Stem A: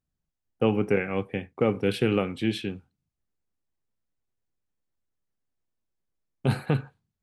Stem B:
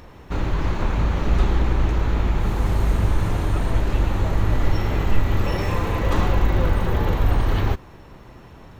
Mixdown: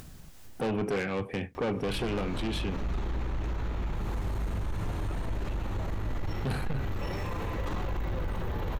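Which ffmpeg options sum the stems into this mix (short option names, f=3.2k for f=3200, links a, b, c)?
-filter_complex "[0:a]acontrast=55,asoftclip=type=tanh:threshold=-18.5dB,volume=0.5dB[a];[1:a]adelay=1550,volume=-6.5dB[b];[a][b]amix=inputs=2:normalize=0,acompressor=mode=upward:threshold=-24dB:ratio=2.5,asoftclip=type=tanh:threshold=-18dB,alimiter=level_in=1.5dB:limit=-24dB:level=0:latency=1:release=52,volume=-1.5dB"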